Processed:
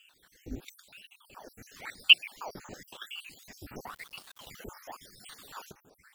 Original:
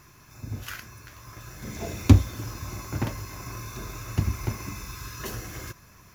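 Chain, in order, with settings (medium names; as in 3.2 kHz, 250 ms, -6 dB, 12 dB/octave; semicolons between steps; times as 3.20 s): random holes in the spectrogram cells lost 71%; 3.87–4.47 s: small samples zeroed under -45 dBFS; ring modulator with a swept carrier 1.5 kHz, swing 90%, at 0.95 Hz; trim -1.5 dB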